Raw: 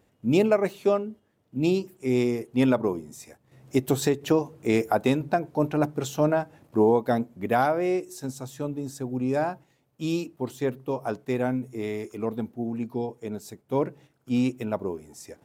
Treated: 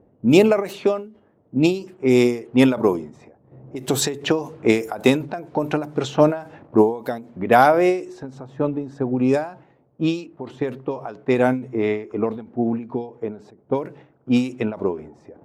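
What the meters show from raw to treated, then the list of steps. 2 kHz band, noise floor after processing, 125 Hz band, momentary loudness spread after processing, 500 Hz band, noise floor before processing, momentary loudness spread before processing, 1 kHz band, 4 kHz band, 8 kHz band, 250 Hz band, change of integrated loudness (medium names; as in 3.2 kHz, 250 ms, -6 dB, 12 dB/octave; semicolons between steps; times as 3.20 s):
+7.5 dB, -59 dBFS, +3.0 dB, 14 LU, +5.0 dB, -68 dBFS, 12 LU, +6.0 dB, +8.5 dB, +6.5 dB, +5.5 dB, +5.5 dB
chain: bass shelf 190 Hz -8 dB; level-controlled noise filter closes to 550 Hz, open at -22 dBFS; in parallel at -1 dB: compression, threshold -34 dBFS, peak gain reduction 16.5 dB; on the sum: endings held to a fixed fall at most 130 dB/s; trim +8.5 dB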